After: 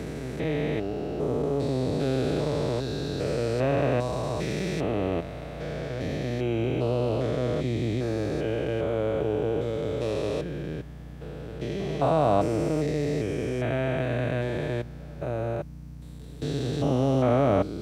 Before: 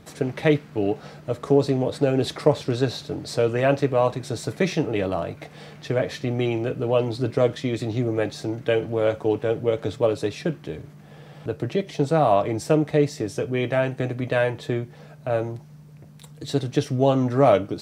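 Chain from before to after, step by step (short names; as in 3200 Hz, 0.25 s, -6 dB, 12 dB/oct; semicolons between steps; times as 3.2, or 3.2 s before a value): stepped spectrum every 0.4 s; hum 60 Hz, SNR 16 dB; pre-echo 0.216 s -21 dB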